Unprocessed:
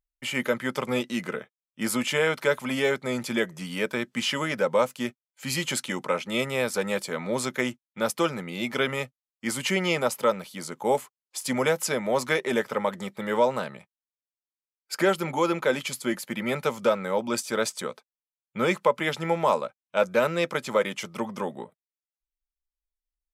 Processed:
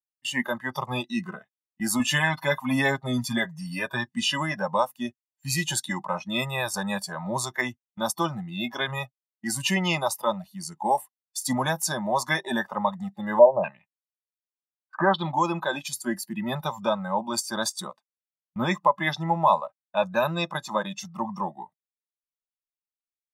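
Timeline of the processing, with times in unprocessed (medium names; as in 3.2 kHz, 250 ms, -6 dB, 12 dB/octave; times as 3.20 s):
1.99–4.09 s: comb 7.4 ms, depth 62%
13.39–15.34 s: step-sequenced low-pass 4 Hz 580–7500 Hz
whole clip: spectral noise reduction 18 dB; gate -51 dBFS, range -18 dB; comb 1.1 ms, depth 93%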